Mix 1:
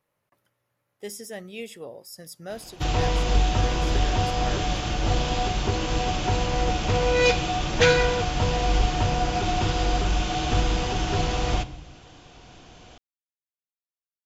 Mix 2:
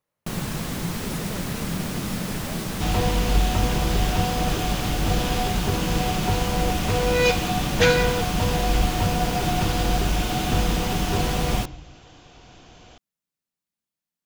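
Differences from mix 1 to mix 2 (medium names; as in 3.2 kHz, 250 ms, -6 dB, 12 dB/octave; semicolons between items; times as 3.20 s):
speech -6.0 dB; first sound: unmuted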